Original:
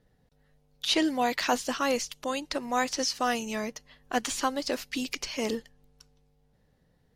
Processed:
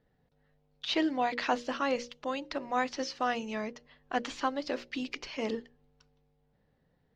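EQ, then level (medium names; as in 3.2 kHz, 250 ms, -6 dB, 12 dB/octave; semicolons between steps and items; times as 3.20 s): distance through air 190 m; bass shelf 99 Hz -7 dB; hum notches 60/120/180/240/300/360/420/480/540/600 Hz; -1.5 dB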